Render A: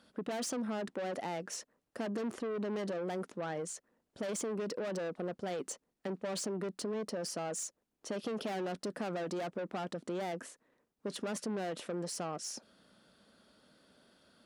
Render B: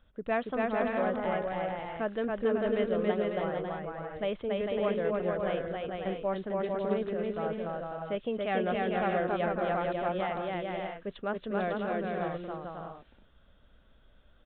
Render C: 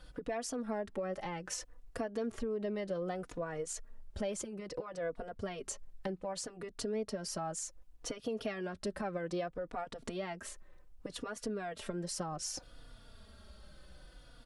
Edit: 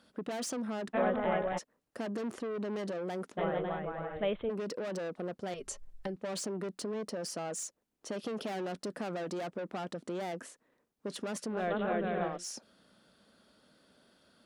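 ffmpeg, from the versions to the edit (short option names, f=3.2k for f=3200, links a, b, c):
-filter_complex "[1:a]asplit=3[a][b][c];[0:a]asplit=5[d][e][f][g][h];[d]atrim=end=0.95[i];[a]atrim=start=0.93:end=1.59[j];[e]atrim=start=1.57:end=3.39[k];[b]atrim=start=3.37:end=4.51[l];[f]atrim=start=4.49:end=5.542[m];[2:a]atrim=start=5.538:end=6.162[n];[g]atrim=start=6.158:end=11.72[o];[c]atrim=start=11.48:end=12.45[p];[h]atrim=start=12.21[q];[i][j]acrossfade=d=0.02:c1=tri:c2=tri[r];[r][k]acrossfade=d=0.02:c1=tri:c2=tri[s];[s][l]acrossfade=d=0.02:c1=tri:c2=tri[t];[t][m]acrossfade=d=0.02:c1=tri:c2=tri[u];[u][n]acrossfade=d=0.004:c1=hsin:c2=hsin[v];[v][o]acrossfade=d=0.004:c1=hsin:c2=hsin[w];[w][p]acrossfade=d=0.24:c1=tri:c2=tri[x];[x][q]acrossfade=d=0.24:c1=tri:c2=tri"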